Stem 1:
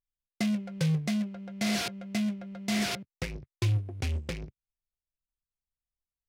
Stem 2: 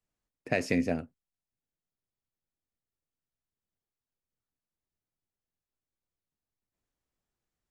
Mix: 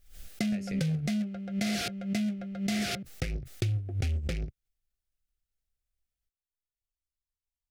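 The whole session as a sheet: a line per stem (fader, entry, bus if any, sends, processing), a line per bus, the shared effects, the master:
+2.0 dB, 0.00 s, no send, background raised ahead of every attack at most 110 dB per second
−8.5 dB, 0.00 s, no send, downward compressor 4 to 1, threshold −35 dBFS, peak gain reduction 11 dB; multiband upward and downward expander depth 100%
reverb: not used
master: Butterworth band-reject 990 Hz, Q 2.6; low-shelf EQ 79 Hz +10.5 dB; downward compressor 6 to 1, threshold −27 dBFS, peak gain reduction 9 dB

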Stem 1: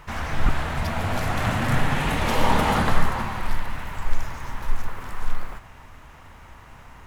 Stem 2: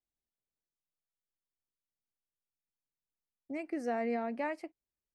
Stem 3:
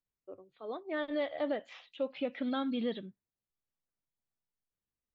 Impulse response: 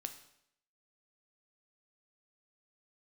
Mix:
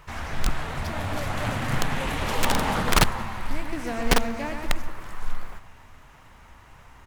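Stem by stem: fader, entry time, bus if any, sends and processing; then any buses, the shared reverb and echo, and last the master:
−0.5 dB, 0.00 s, no send, echo send −22.5 dB, flanger 0.44 Hz, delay 1.6 ms, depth 9.3 ms, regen −62%
+1.5 dB, 0.00 s, no send, echo send −5.5 dB, spectral envelope flattened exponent 0.6
−5.0 dB, 0.00 s, no send, no echo send, no processing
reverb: not used
echo: repeating echo 123 ms, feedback 56%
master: high-shelf EQ 3,500 Hz +4 dB; wrap-around overflow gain 12.5 dB; highs frequency-modulated by the lows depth 0.7 ms

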